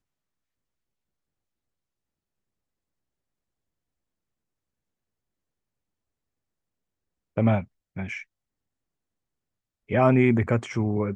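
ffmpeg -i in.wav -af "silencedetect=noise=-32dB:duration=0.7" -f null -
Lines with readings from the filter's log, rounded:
silence_start: 0.00
silence_end: 7.37 | silence_duration: 7.37
silence_start: 8.22
silence_end: 9.91 | silence_duration: 1.69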